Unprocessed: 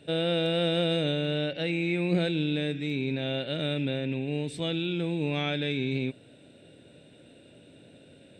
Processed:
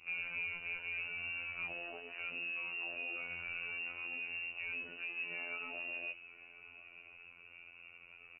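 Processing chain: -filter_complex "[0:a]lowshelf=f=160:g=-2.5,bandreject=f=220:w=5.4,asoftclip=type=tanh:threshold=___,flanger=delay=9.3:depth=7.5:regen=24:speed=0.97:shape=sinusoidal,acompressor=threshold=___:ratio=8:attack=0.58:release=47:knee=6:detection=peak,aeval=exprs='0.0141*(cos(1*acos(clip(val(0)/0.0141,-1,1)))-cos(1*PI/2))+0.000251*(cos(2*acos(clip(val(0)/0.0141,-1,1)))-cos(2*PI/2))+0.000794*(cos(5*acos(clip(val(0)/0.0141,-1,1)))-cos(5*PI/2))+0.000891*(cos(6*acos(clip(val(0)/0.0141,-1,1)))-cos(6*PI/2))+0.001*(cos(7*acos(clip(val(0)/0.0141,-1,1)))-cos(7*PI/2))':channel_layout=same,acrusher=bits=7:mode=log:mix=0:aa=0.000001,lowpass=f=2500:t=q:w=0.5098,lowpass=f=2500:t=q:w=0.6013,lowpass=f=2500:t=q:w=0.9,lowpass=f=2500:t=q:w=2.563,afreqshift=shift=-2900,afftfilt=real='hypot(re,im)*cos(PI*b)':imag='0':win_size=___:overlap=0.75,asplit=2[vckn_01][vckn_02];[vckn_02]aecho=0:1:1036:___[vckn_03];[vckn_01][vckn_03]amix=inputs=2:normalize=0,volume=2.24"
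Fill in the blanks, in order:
0.0841, 0.00794, 2048, 0.112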